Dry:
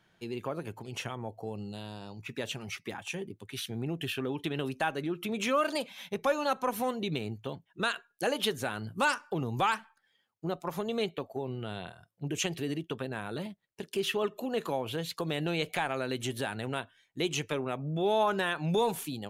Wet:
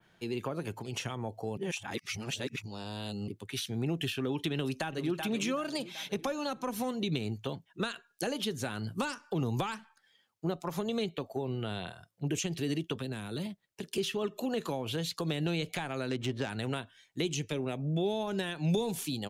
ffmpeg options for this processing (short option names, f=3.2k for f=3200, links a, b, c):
-filter_complex "[0:a]asplit=2[a][b];[b]afade=t=in:st=4.54:d=0.01,afade=t=out:st=5.18:d=0.01,aecho=0:1:380|760|1140|1520|1900:0.298538|0.149269|0.0746346|0.0373173|0.0186586[c];[a][c]amix=inputs=2:normalize=0,asettb=1/sr,asplit=3[d][e][f];[d]atrim=end=12.964[g];[e]atrim=start=12.96:end=13.98,asetpts=PTS-STARTPTS,afade=t=in:d=0.004:c=qsin,afade=t=out:st=1.016:d=0.004:c=qsin,acrossover=split=340|3000[h][i][j];[i]acompressor=threshold=-46dB:ratio=6:attack=3.2:release=140:knee=2.83:detection=peak[k];[h][k][j]amix=inputs=3:normalize=0[l];[f]atrim=start=13.976[m];[g][l]acrossfade=d=0.004:c1=hsin:c2=qsin[n];[n][m]acrossfade=d=0.004:c1=qsin:c2=hsin,asettb=1/sr,asplit=3[o][p][q];[o]atrim=end=16.094[r];[p]atrim=start=16.09:end=16.5,asetpts=PTS-STARTPTS,afade=t=in:d=0.004:c=qsin,afade=t=out:st=0.406:d=0.004:c=qsin,adynamicsmooth=sensitivity=4.5:basefreq=1.4k[s];[q]atrim=start=16.496[t];[r][s]acrossfade=d=0.004:c1=hsin:c2=qsin[u];[u][t]acrossfade=d=0.004:c1=qsin:c2=hsin,asettb=1/sr,asplit=3[v][w][x];[v]atrim=end=17.304[y];[w]atrim=start=17.3:end=18.99,asetpts=PTS-STARTPTS,afade=t=in:d=0.004:c=qsin,afade=t=out:st=1.686:d=0.004:c=qsin,equalizer=f=1.2k:t=o:w=0.78:g=-8[z];[x]atrim=start=18.986[aa];[y][z]acrossfade=d=0.004:c1=hsin:c2=qsin[ab];[ab][aa]acrossfade=d=0.004:c1=qsin:c2=hsin,asplit=3[ac][ad][ae];[ac]atrim=end=1.572[af];[ad]atrim=start=1.568:end=3.282,asetpts=PTS-STARTPTS,areverse[ag];[ae]atrim=start=3.278[ah];[af][ag]acrossfade=d=0.004:c1=hsin:c2=hsin[ai];[ai][ah]acrossfade=d=0.004:c1=hsin:c2=hsin,adynamicequalizer=threshold=0.00251:dfrequency=5600:dqfactor=0.71:tfrequency=5600:tqfactor=0.71:attack=5:release=100:ratio=0.375:range=4:mode=boostabove:tftype=bell,acrossover=split=330[aj][ak];[ak]acompressor=threshold=-37dB:ratio=6[al];[aj][al]amix=inputs=2:normalize=0,volume=2.5dB"